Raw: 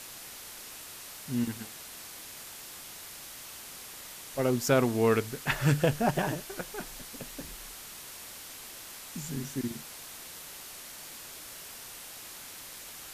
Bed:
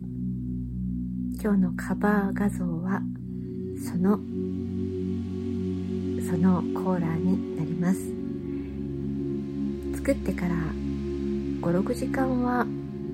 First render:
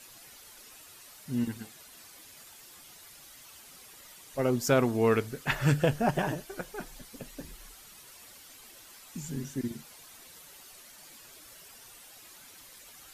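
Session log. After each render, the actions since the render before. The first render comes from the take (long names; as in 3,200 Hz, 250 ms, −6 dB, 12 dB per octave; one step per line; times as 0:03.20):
broadband denoise 10 dB, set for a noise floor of −46 dBFS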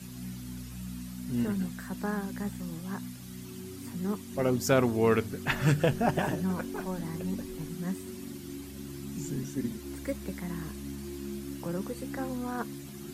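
mix in bed −9.5 dB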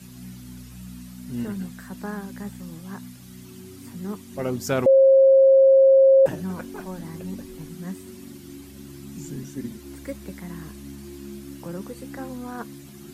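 0:04.86–0:06.26: beep over 537 Hz −10.5 dBFS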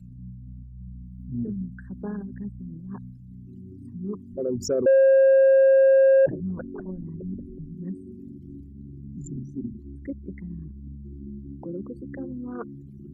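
spectral envelope exaggerated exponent 3
soft clipping −11.5 dBFS, distortion −20 dB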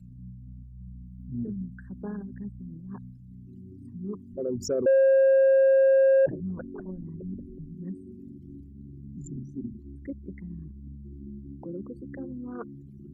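level −3 dB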